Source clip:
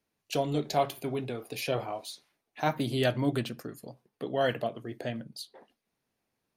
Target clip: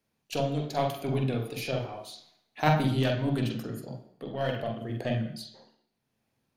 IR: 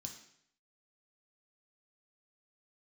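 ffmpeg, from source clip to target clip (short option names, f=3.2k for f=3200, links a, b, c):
-filter_complex "[0:a]aeval=exprs='0.224*(cos(1*acos(clip(val(0)/0.224,-1,1)))-cos(1*PI/2))+0.0316*(cos(3*acos(clip(val(0)/0.224,-1,1)))-cos(3*PI/2))+0.00355*(cos(8*acos(clip(val(0)/0.224,-1,1)))-cos(8*PI/2))':c=same,tremolo=f=0.79:d=0.62,asplit=2[a][b];[1:a]atrim=start_sample=2205,lowpass=3.7k,adelay=45[c];[b][c]afir=irnorm=-1:irlink=0,volume=4dB[d];[a][d]amix=inputs=2:normalize=0,volume=6dB"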